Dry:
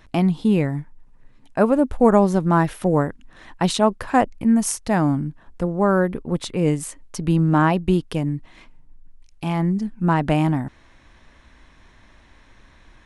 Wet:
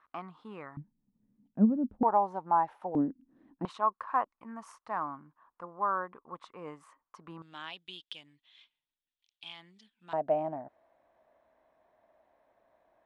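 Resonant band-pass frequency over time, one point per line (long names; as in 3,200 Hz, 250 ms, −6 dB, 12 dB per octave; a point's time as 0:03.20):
resonant band-pass, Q 6.1
1,200 Hz
from 0:00.77 210 Hz
from 0:02.03 870 Hz
from 0:02.95 270 Hz
from 0:03.65 1,100 Hz
from 0:07.42 3,400 Hz
from 0:10.13 650 Hz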